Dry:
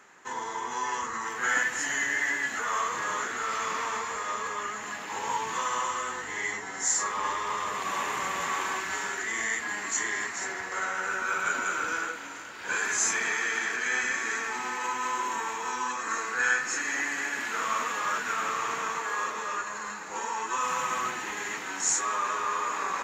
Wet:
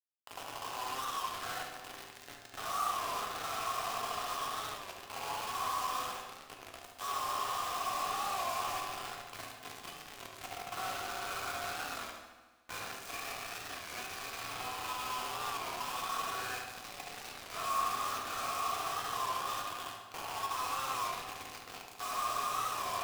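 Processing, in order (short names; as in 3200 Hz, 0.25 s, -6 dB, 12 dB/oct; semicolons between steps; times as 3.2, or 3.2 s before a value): in parallel at -1 dB: limiter -23.5 dBFS, peak gain reduction 10 dB; on the sum: vowel filter a; requantised 6-bit, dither none; on a send: darkening echo 71 ms, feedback 67%, low-pass 3900 Hz, level -6 dB; on the sum: two-slope reverb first 0.81 s, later 2.4 s, from -18 dB, DRR 2.5 dB; record warp 33 1/3 rpm, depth 100 cents; gain -4.5 dB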